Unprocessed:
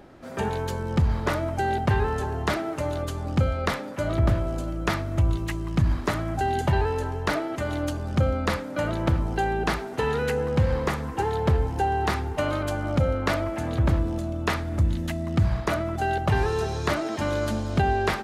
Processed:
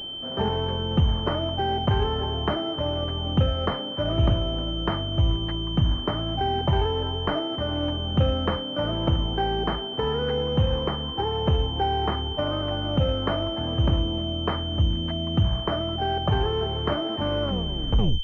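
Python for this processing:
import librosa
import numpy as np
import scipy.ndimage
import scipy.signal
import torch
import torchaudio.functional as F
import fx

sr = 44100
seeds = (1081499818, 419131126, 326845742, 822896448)

y = fx.tape_stop_end(x, sr, length_s=0.8)
y = fx.rider(y, sr, range_db=4, speed_s=2.0)
y = fx.pwm(y, sr, carrier_hz=3100.0)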